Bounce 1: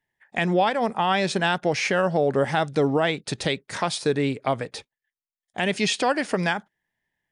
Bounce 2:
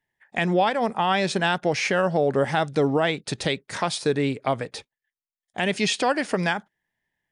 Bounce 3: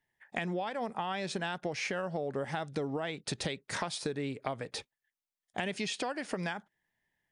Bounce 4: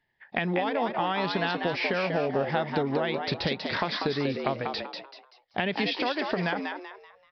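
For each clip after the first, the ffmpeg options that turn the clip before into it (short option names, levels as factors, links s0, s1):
-af anull
-af "acompressor=threshold=0.0316:ratio=10,volume=0.841"
-filter_complex "[0:a]aresample=11025,aresample=44100,asplit=5[s0][s1][s2][s3][s4];[s1]adelay=192,afreqshift=93,volume=0.562[s5];[s2]adelay=384,afreqshift=186,volume=0.191[s6];[s3]adelay=576,afreqshift=279,volume=0.0653[s7];[s4]adelay=768,afreqshift=372,volume=0.0221[s8];[s0][s5][s6][s7][s8]amix=inputs=5:normalize=0,volume=2.11"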